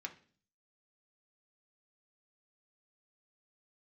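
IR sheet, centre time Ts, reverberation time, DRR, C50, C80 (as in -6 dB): 7 ms, 0.45 s, 2.5 dB, 14.0 dB, 19.5 dB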